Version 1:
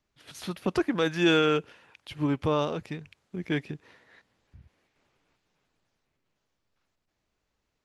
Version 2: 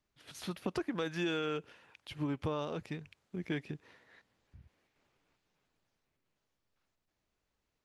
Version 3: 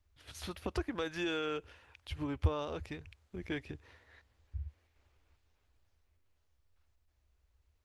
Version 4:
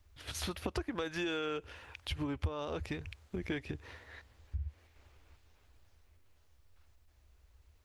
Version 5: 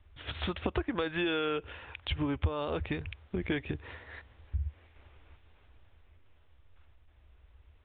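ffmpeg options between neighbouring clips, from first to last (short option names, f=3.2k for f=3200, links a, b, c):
-af "acompressor=threshold=-27dB:ratio=6,volume=-4.5dB"
-af "lowshelf=f=110:t=q:w=3:g=12.5"
-af "acompressor=threshold=-45dB:ratio=3,volume=9dB"
-af "aresample=8000,aresample=44100,volume=5dB"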